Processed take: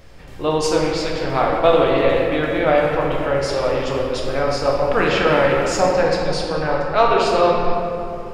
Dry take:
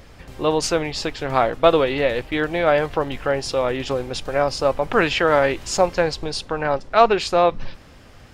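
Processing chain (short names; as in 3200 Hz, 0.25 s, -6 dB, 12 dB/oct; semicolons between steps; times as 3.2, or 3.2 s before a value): shoebox room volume 120 m³, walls hard, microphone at 0.55 m; 3.62–4.38 hard clip -8.5 dBFS, distortion -40 dB; gain -3 dB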